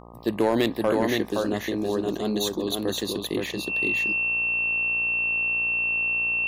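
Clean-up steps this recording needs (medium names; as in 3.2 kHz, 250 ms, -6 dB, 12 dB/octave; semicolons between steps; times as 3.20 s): clip repair -13 dBFS; de-hum 58.4 Hz, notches 21; band-stop 2.7 kHz, Q 30; inverse comb 519 ms -3.5 dB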